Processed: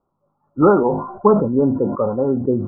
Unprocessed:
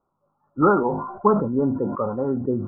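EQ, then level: low-pass 1 kHz 6 dB/octave; dynamic bell 580 Hz, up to +4 dB, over -34 dBFS, Q 1.1; distance through air 250 m; +4.5 dB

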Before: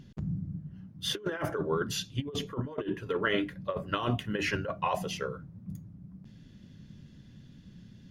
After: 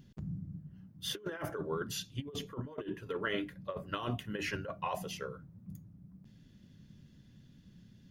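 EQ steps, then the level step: treble shelf 11 kHz +10.5 dB; -6.5 dB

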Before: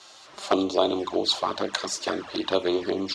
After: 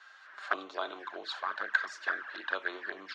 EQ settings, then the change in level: band-pass filter 1.6 kHz, Q 7.7; +8.5 dB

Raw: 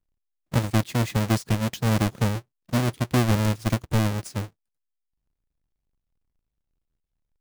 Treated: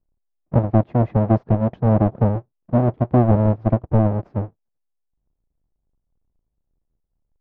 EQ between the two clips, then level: Chebyshev low-pass 740 Hz, order 2; dynamic bell 660 Hz, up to +6 dB, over -43 dBFS, Q 3; distance through air 140 m; +6.5 dB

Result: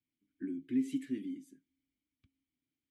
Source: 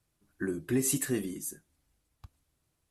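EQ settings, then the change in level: vowel filter i; bass shelf 120 Hz +7.5 dB; 0.0 dB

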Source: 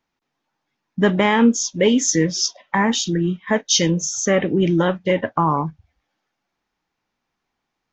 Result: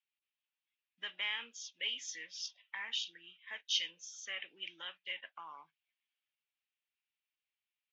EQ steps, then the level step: ladder band-pass 3.2 kHz, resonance 55%; distance through air 52 m; tilt EQ -2 dB/octave; 0.0 dB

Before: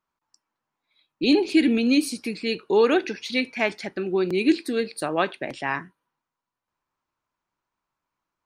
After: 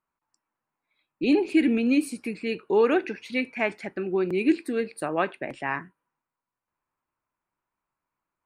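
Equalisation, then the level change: high-order bell 4.5 kHz -9.5 dB 1.2 oct; treble shelf 8.6 kHz -6.5 dB; -2.0 dB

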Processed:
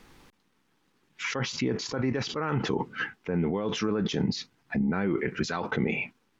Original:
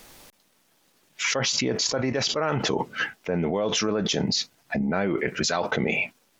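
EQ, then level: low-pass 1.4 kHz 6 dB/octave; peaking EQ 620 Hz -12.5 dB 0.54 oct; 0.0 dB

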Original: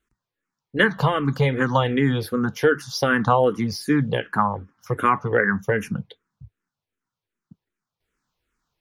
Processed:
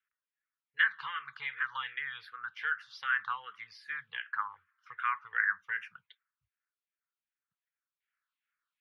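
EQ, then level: inverse Chebyshev high-pass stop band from 690 Hz, stop band 40 dB; low-pass 9.8 kHz; distance through air 430 m; -2.0 dB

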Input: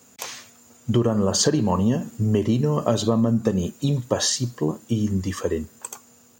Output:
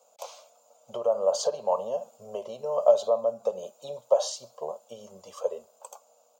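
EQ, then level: resonant high-pass 580 Hz, resonance Q 4.9; treble shelf 5.2 kHz -9 dB; static phaser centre 750 Hz, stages 4; -6.5 dB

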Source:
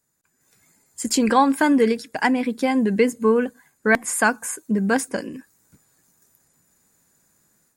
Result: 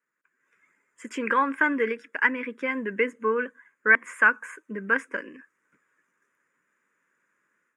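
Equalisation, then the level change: band-pass 600–2300 Hz; static phaser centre 1.8 kHz, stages 4; +4.0 dB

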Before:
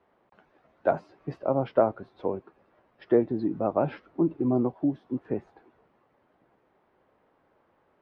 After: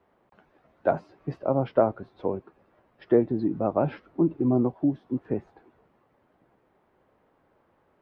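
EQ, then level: bass shelf 220 Hz +5 dB; 0.0 dB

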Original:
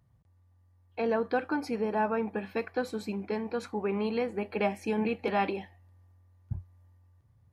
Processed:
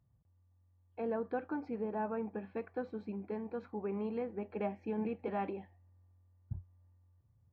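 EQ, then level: tape spacing loss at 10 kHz 44 dB; -5.5 dB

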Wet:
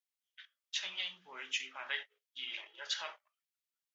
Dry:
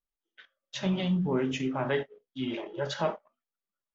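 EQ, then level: Chebyshev high-pass 2.4 kHz, order 2; +2.0 dB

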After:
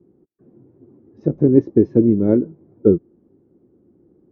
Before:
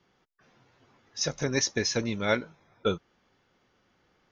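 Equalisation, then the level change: high-pass 160 Hz 6 dB/octave; resonant low-pass 340 Hz, resonance Q 3.7; bass shelf 250 Hz +10 dB; +8.0 dB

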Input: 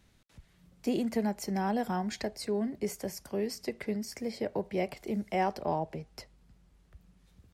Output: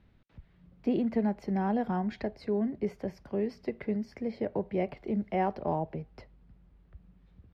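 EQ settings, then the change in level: distance through air 340 m; bass shelf 470 Hz +3.5 dB; treble shelf 9.7 kHz +4 dB; 0.0 dB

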